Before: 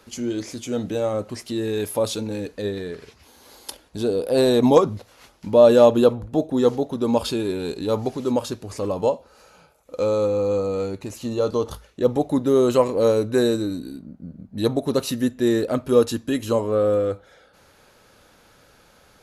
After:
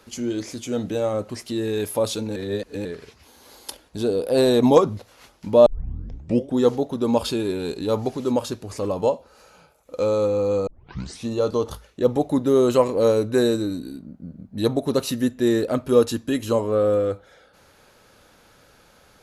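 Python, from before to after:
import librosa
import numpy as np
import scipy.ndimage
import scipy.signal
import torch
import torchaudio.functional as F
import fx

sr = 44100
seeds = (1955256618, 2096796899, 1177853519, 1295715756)

y = fx.edit(x, sr, fx.reverse_span(start_s=2.36, length_s=0.49),
    fx.tape_start(start_s=5.66, length_s=0.91),
    fx.tape_start(start_s=10.67, length_s=0.61), tone=tone)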